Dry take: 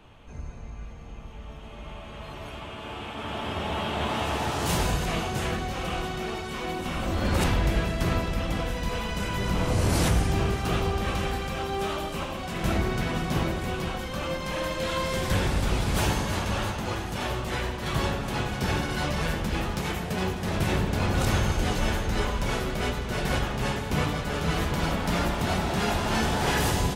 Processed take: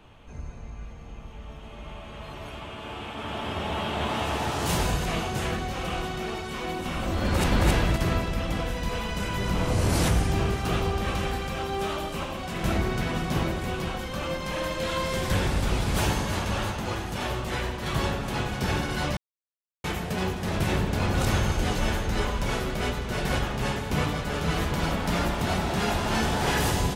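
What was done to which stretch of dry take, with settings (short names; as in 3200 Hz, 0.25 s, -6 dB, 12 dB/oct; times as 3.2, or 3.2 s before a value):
7.24–7.69 echo throw 0.27 s, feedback 20%, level -0.5 dB
19.17–19.84 mute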